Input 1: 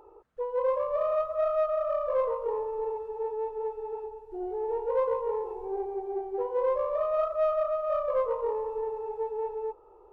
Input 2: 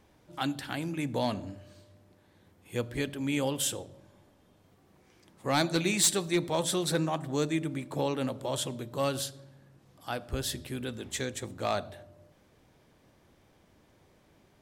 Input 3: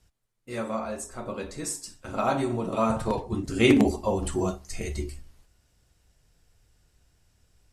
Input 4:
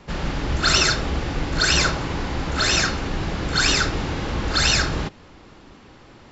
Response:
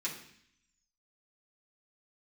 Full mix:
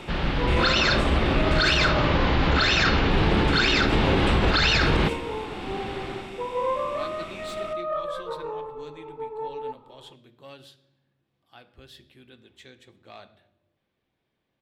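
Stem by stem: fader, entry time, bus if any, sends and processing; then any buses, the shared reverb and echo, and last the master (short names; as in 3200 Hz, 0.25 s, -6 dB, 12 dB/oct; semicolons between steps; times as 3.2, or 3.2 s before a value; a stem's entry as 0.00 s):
-0.5 dB, 0.00 s, no send, band shelf 1200 Hz +8 dB; cascading phaser falling 0.32 Hz
-16.5 dB, 1.45 s, send -10 dB, high shelf 4700 Hz +6.5 dB
-7.5 dB, 0.00 s, muted 1.89–3.11, send -5.5 dB, per-bin compression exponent 0.4; high shelf 5700 Hz +5.5 dB
0.0 dB, 0.00 s, no send, AGC gain up to 12 dB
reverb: on, RT60 0.65 s, pre-delay 3 ms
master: resonant high shelf 5100 Hz -13.5 dB, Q 1.5; limiter -11.5 dBFS, peak gain reduction 10.5 dB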